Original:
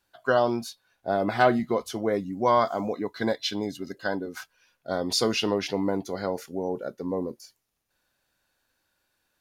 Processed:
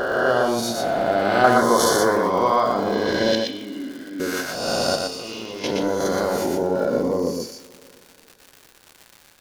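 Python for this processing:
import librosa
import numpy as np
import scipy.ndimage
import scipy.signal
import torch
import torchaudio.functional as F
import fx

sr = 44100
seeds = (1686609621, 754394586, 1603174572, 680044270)

p1 = fx.spec_swells(x, sr, rise_s=1.46)
p2 = fx.transient(p1, sr, attack_db=5, sustain_db=-2)
p3 = fx.over_compress(p2, sr, threshold_db=-31.0, ratio=-1.0)
p4 = p2 + (p3 * 10.0 ** (1.5 / 20.0))
p5 = fx.vowel_filter(p4, sr, vowel='i', at=(3.35, 4.2))
p6 = fx.level_steps(p5, sr, step_db=16, at=(4.95, 5.64))
p7 = fx.rev_double_slope(p6, sr, seeds[0], early_s=0.5, late_s=3.1, knee_db=-17, drr_db=9.0)
p8 = fx.dmg_crackle(p7, sr, seeds[1], per_s=140.0, level_db=-29.0)
p9 = fx.curve_eq(p8, sr, hz=(300.0, 1500.0, 2600.0, 4400.0), db=(0, 10, -7, 8), at=(1.44, 2.16))
p10 = p9 + fx.echo_single(p9, sr, ms=120, db=-3.5, dry=0)
y = p10 * 10.0 ** (-3.0 / 20.0)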